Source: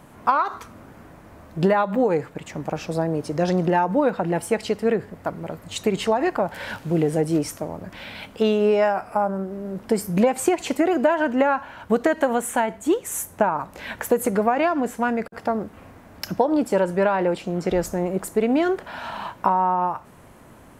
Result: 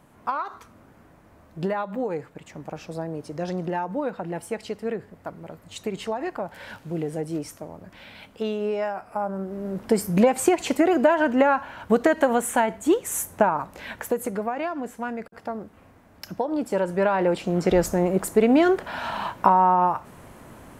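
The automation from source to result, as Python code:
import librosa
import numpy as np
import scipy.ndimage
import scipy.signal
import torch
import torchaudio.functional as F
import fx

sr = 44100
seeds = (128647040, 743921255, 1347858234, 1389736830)

y = fx.gain(x, sr, db=fx.line((9.05, -8.0), (9.65, 0.5), (13.44, 0.5), (14.45, -8.0), (16.28, -8.0), (17.57, 2.5)))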